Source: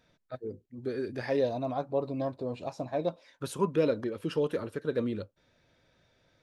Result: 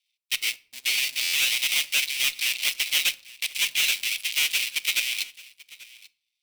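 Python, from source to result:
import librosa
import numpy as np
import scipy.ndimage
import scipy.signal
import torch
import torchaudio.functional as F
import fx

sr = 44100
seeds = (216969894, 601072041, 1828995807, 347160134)

p1 = fx.dead_time(x, sr, dead_ms=0.28)
p2 = fx.notch(p1, sr, hz=6700.0, q=7.4)
p3 = fx.leveller(p2, sr, passes=2)
p4 = fx.rider(p3, sr, range_db=3, speed_s=0.5)
p5 = scipy.signal.sosfilt(scipy.signal.butter(12, 2200.0, 'highpass', fs=sr, output='sos'), p4)
p6 = fx.leveller(p5, sr, passes=3)
p7 = p6 + fx.echo_single(p6, sr, ms=838, db=-21.0, dry=0)
p8 = fx.room_shoebox(p7, sr, seeds[0], volume_m3=590.0, walls='furnished', distance_m=0.33)
p9 = fx.buffer_glitch(p8, sr, at_s=(1.22,), block=512, repeats=9)
y = p9 * librosa.db_to_amplitude(7.5)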